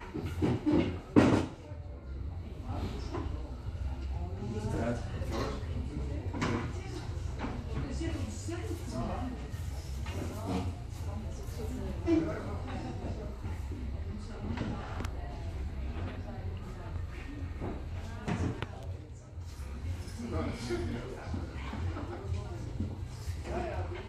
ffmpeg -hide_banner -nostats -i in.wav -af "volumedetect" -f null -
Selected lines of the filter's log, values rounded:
mean_volume: -35.3 dB
max_volume: -9.4 dB